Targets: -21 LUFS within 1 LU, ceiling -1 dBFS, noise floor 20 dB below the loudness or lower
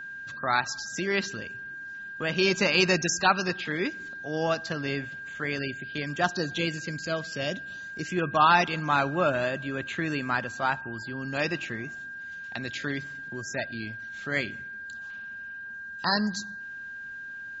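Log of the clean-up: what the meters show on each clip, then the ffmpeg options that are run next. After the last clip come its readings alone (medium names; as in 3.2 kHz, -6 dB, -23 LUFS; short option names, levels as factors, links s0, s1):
steady tone 1.6 kHz; tone level -37 dBFS; loudness -29.0 LUFS; peak level -8.0 dBFS; loudness target -21.0 LUFS
-> -af "bandreject=f=1600:w=30"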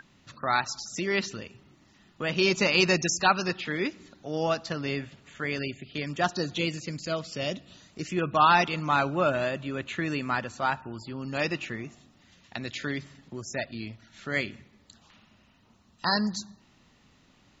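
steady tone not found; loudness -28.5 LUFS; peak level -9.0 dBFS; loudness target -21.0 LUFS
-> -af "volume=2.37"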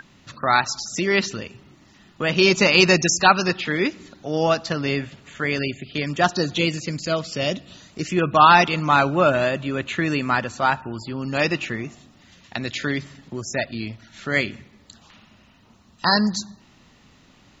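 loudness -21.0 LUFS; peak level -1.5 dBFS; noise floor -54 dBFS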